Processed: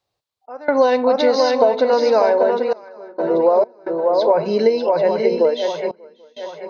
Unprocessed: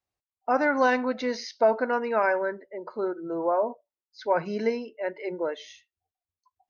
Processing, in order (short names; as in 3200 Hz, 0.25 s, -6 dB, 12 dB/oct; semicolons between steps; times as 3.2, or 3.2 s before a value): ten-band EQ 125 Hz +9 dB, 500 Hz +11 dB, 1000 Hz +6 dB, 4000 Hz +12 dB; on a send: swung echo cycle 0.786 s, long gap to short 3:1, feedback 33%, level -6 dB; on the sum: step gate "xx.xxxxxxxxx.." 66 bpm -24 dB; compressor 6:1, threshold -14 dBFS, peak gain reduction 8.5 dB; dynamic EQ 1400 Hz, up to -7 dB, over -37 dBFS, Q 1.6; gain +4 dB